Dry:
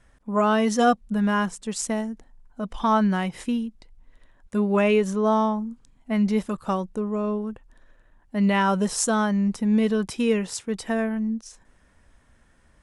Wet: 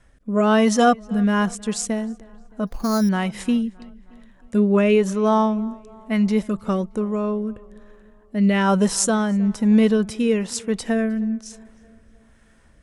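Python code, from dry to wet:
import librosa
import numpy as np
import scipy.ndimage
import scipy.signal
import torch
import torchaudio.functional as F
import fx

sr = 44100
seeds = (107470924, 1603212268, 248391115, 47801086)

p1 = fx.rotary(x, sr, hz=1.1)
p2 = p1 + fx.echo_tape(p1, sr, ms=311, feedback_pct=57, wet_db=-22.0, lp_hz=2900.0, drive_db=8.0, wow_cents=21, dry=0)
p3 = fx.resample_bad(p2, sr, factor=8, down='filtered', up='hold', at=(2.67, 3.09))
y = p3 * 10.0 ** (5.5 / 20.0)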